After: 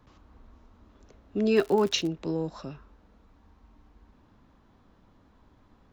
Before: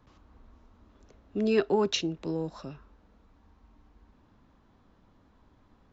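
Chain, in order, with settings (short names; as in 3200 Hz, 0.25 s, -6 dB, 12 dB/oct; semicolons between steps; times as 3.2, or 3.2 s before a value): 1.55–2.07 crackle 180/s -> 61/s -33 dBFS; gain +2 dB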